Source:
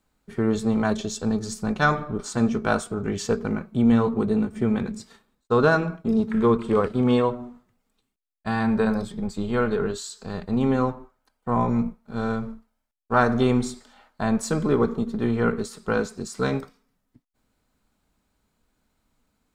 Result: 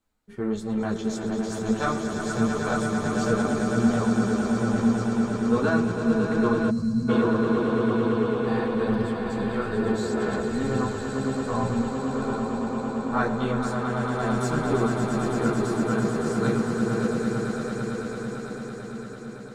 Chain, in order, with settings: echo with a slow build-up 112 ms, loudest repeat 8, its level -7.5 dB; chorus voices 4, 1.1 Hz, delay 12 ms, depth 3.2 ms; time-frequency box 6.70–7.09 s, 250–4000 Hz -20 dB; trim -3.5 dB

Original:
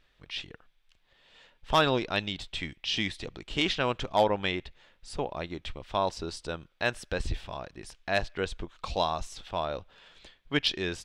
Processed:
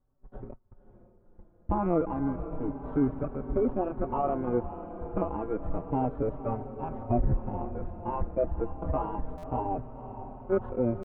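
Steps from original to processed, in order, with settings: bit-reversed sample order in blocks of 32 samples; rotary cabinet horn 0.85 Hz; peak limiter -21.5 dBFS, peak gain reduction 11 dB; peaking EQ 220 Hz +6 dB 0.57 oct; waveshaping leveller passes 1; added noise brown -46 dBFS; gate -40 dBFS, range -29 dB; pitch shift +5 st; inverse Chebyshev low-pass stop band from 5.6 kHz, stop band 70 dB; echo that smears into a reverb 532 ms, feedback 65%, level -12 dB; buffer glitch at 9.37 s, samples 512, times 4; endless flanger 4.8 ms -0.3 Hz; trim +8 dB

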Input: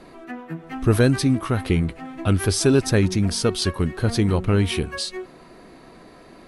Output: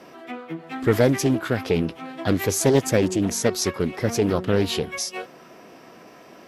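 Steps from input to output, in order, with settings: formant shift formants +4 st; high-pass 140 Hz 12 dB/octave; loudspeaker Doppler distortion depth 0.31 ms

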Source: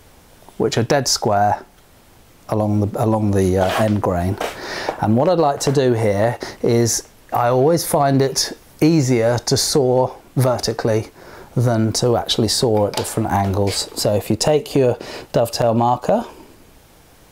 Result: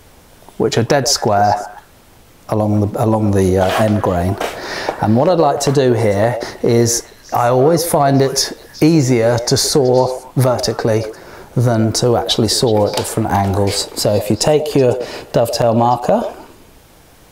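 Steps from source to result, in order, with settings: repeats whose band climbs or falls 125 ms, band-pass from 530 Hz, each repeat 1.4 oct, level -9.5 dB; trim +3 dB

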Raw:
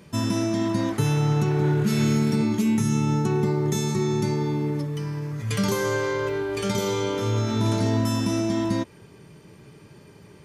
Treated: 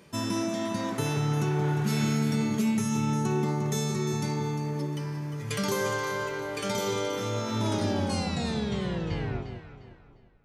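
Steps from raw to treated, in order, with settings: tape stop on the ending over 2.85 s; tone controls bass -7 dB, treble 0 dB; echo whose repeats swap between lows and highs 176 ms, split 990 Hz, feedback 55%, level -5.5 dB; trim -2.5 dB

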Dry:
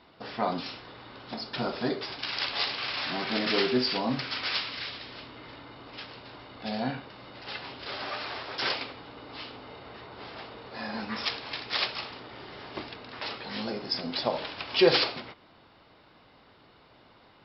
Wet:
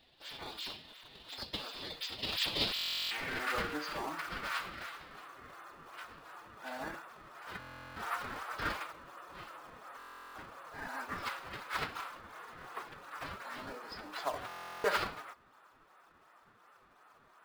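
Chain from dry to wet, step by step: band-pass sweep 3.5 kHz -> 1.3 kHz, 2.90–3.47 s; in parallel at -4.5 dB: decimation with a swept rate 19×, swing 160% 2.8 Hz; on the sum: formant-preserving pitch shift +3 st; buffer glitch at 2.74/7.59/9.98/14.47 s, samples 1024, times 15

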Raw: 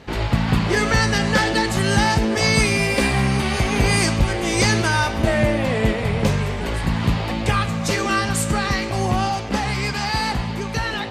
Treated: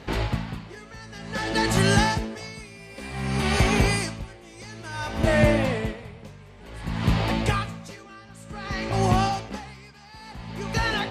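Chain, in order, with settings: 8.03–9.03 s: treble shelf 7.2 kHz -8.5 dB; logarithmic tremolo 0.55 Hz, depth 25 dB

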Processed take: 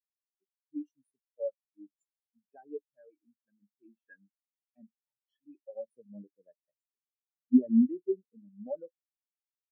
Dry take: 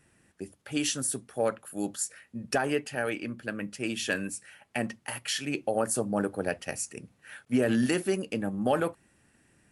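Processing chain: spectral contrast expander 4:1; trim +4.5 dB

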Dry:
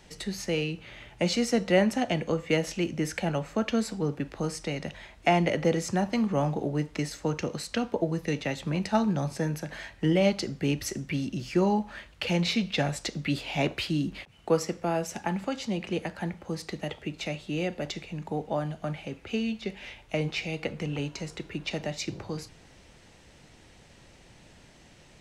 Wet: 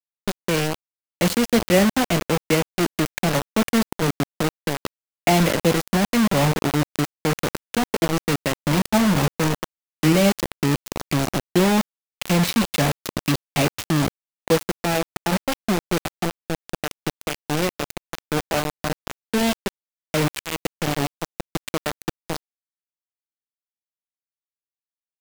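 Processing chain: bass shelf 380 Hz +6 dB; bit crusher 4-bit; trim +2.5 dB

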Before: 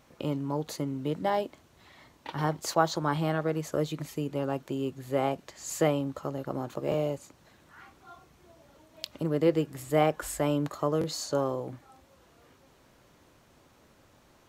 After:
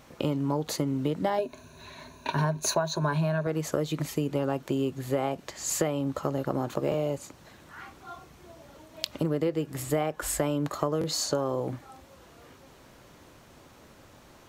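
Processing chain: 1.38–3.47 s: rippled EQ curve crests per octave 1.5, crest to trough 14 dB; compression 16:1, threshold -30 dBFS, peak gain reduction 15 dB; trim +7 dB

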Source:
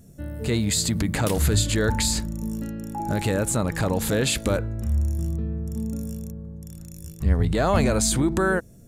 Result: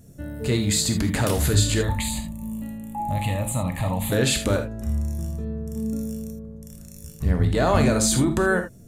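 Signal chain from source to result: 1.81–4.12 s: static phaser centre 1.5 kHz, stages 6; gated-style reverb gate 100 ms flat, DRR 5 dB

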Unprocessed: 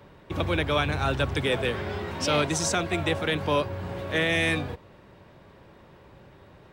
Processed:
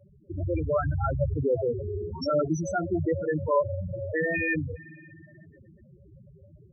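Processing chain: level rider gain up to 4 dB; spring tank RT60 3.9 s, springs 57 ms, chirp 30 ms, DRR 15 dB; loudest bins only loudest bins 4

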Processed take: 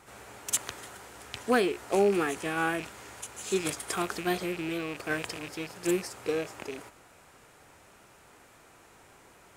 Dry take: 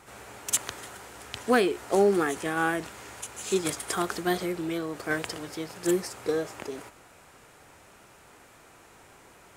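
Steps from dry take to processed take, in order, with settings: rattle on loud lows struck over -43 dBFS, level -27 dBFS; trim -2.5 dB

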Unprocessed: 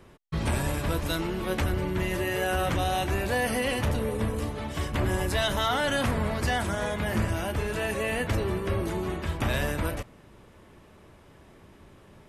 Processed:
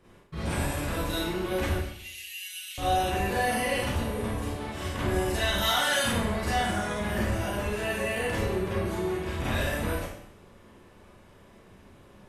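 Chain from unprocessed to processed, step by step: 1.76–2.78 s: steep high-pass 2.5 kHz 36 dB/octave; 5.58–6.04 s: tilt EQ +3 dB/octave; Schroeder reverb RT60 0.69 s, combs from 31 ms, DRR -8.5 dB; trim -9 dB

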